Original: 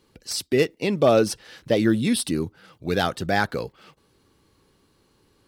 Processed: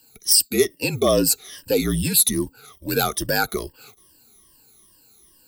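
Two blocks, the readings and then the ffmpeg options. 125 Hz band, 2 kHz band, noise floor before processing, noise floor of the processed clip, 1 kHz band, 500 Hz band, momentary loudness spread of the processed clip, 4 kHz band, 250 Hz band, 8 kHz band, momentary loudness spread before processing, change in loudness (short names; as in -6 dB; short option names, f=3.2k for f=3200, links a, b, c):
+1.0 dB, +0.5 dB, -64 dBFS, -56 dBFS, -1.0 dB, -0.5 dB, 12 LU, +6.5 dB, -1.5 dB, +13.0 dB, 15 LU, +3.0 dB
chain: -filter_complex "[0:a]afftfilt=real='re*pow(10,18/40*sin(2*PI*(1.3*log(max(b,1)*sr/1024/100)/log(2)-(-2.4)*(pts-256)/sr)))':imag='im*pow(10,18/40*sin(2*PI*(1.3*log(max(b,1)*sr/1024/100)/log(2)-(-2.4)*(pts-256)/sr)))':win_size=1024:overlap=0.75,afreqshift=-48,aemphasis=mode=production:type=50kf,asplit=2[a][b];[b]alimiter=limit=-11dB:level=0:latency=1:release=52,volume=-2dB[c];[a][c]amix=inputs=2:normalize=0,adynamicequalizer=threshold=0.0794:dfrequency=410:dqfactor=0.83:tfrequency=410:tqfactor=0.83:attack=5:release=100:ratio=0.375:range=2.5:mode=boostabove:tftype=bell,crystalizer=i=2:c=0,volume=-10.5dB"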